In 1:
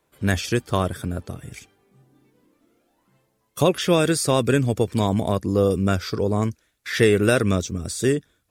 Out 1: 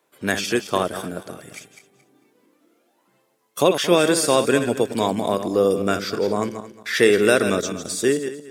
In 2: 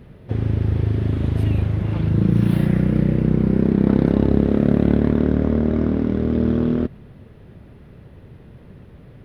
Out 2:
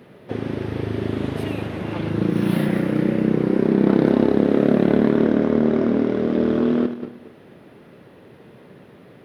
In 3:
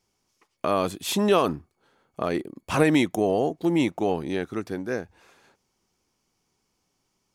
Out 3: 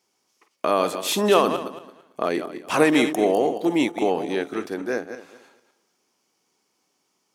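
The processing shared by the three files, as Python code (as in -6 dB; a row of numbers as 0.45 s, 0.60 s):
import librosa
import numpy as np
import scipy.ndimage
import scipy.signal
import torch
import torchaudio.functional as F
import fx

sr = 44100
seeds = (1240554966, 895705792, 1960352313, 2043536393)

y = fx.reverse_delay_fb(x, sr, ms=112, feedback_pct=46, wet_db=-9)
y = scipy.signal.sosfilt(scipy.signal.butter(2, 270.0, 'highpass', fs=sr, output='sos'), y)
y = y * 10.0 ** (-3 / 20.0) / np.max(np.abs(y))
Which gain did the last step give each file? +2.5 dB, +4.0 dB, +3.5 dB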